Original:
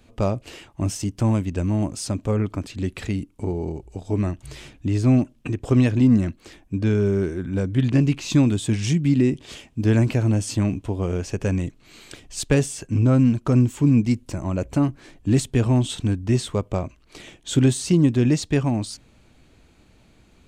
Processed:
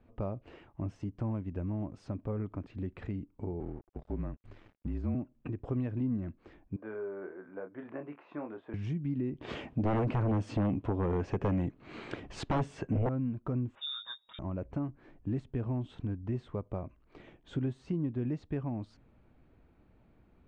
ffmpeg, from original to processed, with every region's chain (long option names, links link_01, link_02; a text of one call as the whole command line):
ffmpeg -i in.wav -filter_complex "[0:a]asettb=1/sr,asplit=3[link_01][link_02][link_03];[link_01]atrim=end=3.604[link_04];[link_02]atrim=start=3.6:end=5.15,asetpts=PTS-STARTPTS,afade=type=in:duration=0.004:curve=qsin,afade=type=out:start_time=1.546:duration=0.004:curve=qsin,afreqshift=-36,aeval=exprs='sgn(val(0))*max(abs(val(0))-0.00668,0)':channel_layout=same[link_05];[link_03]atrim=start=5.146[link_06];[link_04][link_05]acrossfade=duration=0.004:curve1=hsin:curve2=qsin[link_07];[link_07][link_06]acrossfade=duration=0.004:curve1=qsin:curve2=hsin,asettb=1/sr,asplit=3[link_08][link_09][link_10];[link_08]atrim=end=6.764[link_11];[link_09]atrim=start=6.76:end=8.74,asetpts=PTS-STARTPTS,afade=type=in:duration=0.004:curve=qsin,afade=type=out:start_time=1.976:duration=0.004:curve=qsin,asuperpass=centerf=960:order=4:qfactor=0.72,asplit=2[link_12][link_13];[link_13]adelay=27,volume=-7dB[link_14];[link_12][link_14]amix=inputs=2:normalize=0,atrim=end_sample=87318[link_15];[link_10]atrim=start=8.736[link_16];[link_11][link_15]acrossfade=duration=0.004:curve1=hsin:curve2=qsin[link_17];[link_17][link_16]acrossfade=duration=0.004:curve1=qsin:curve2=hsin,asettb=1/sr,asplit=3[link_18][link_19][link_20];[link_18]atrim=end=9.414[link_21];[link_19]atrim=start=9.41:end=13.09,asetpts=PTS-STARTPTS,afade=type=in:duration=0.004:curve=qsin,afade=type=out:start_time=3.676:duration=0.004:curve=qsin,highpass=frequency=120:poles=1,aeval=exprs='0.447*sin(PI/2*3.98*val(0)/0.447)':channel_layout=same[link_22];[link_20]atrim=start=13.086[link_23];[link_21][link_22]acrossfade=duration=0.004:curve1=hsin:curve2=qsin[link_24];[link_24][link_23]acrossfade=duration=0.004:curve1=qsin:curve2=hsin,asettb=1/sr,asplit=3[link_25][link_26][link_27];[link_25]atrim=end=13.754[link_28];[link_26]atrim=start=13.75:end=14.39,asetpts=PTS-STARTPTS,afade=type=in:duration=0.004:curve=qsin,afade=type=out:start_time=0.636:duration=0.004:curve=qsin,aecho=1:1:6.7:0.56,atrim=end_sample=28224,lowpass=frequency=3200:width_type=q:width=0.5098,lowpass=frequency=3200:width_type=q:width=0.6013,lowpass=frequency=3200:width_type=q:width=0.9,lowpass=frequency=3200:width_type=q:width=2.563,afreqshift=-3800[link_29];[link_27]atrim=start=14.386[link_30];[link_28][link_29]acrossfade=duration=0.004:curve1=hsin:curve2=qsin[link_31];[link_31][link_30]acrossfade=duration=0.004:curve1=qsin:curve2=hsin,lowpass=1500,acompressor=threshold=-28dB:ratio=2,volume=-8dB" out.wav